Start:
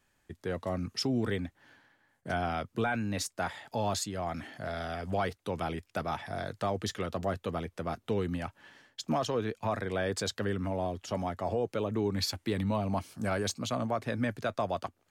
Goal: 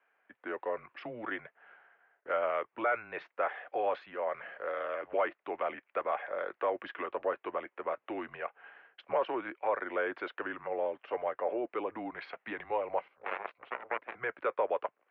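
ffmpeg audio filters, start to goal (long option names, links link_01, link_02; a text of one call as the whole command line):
ffmpeg -i in.wav -filter_complex "[0:a]asettb=1/sr,asplit=3[link_01][link_02][link_03];[link_01]atrim=end=13.084[link_04];[link_02]atrim=start=13.08:end=14.15,asetpts=PTS-STARTPTS,afade=type=in:duration=0.004:curve=qsin,afade=type=out:start_time=1.066:duration=0.004:curve=qsin,aeval=exprs='0.1*(cos(1*acos(clip(val(0)/0.1,-1,1)))-cos(1*PI/2))+0.0447*(cos(3*acos(clip(val(0)/0.1,-1,1)))-cos(3*PI/2))':channel_layout=same[link_05];[link_03]atrim=start=14.146[link_06];[link_04][link_05]acrossfade=duration=0.004:curve1=hsin:curve2=qsin[link_07];[link_07][link_06]acrossfade=duration=0.004:curve1=qsin:curve2=hsin,highpass=frequency=580:width_type=q:width=0.5412,highpass=frequency=580:width_type=q:width=1.307,lowpass=frequency=2600:width_type=q:width=0.5176,lowpass=frequency=2600:width_type=q:width=0.7071,lowpass=frequency=2600:width_type=q:width=1.932,afreqshift=-120,volume=3dB" out.wav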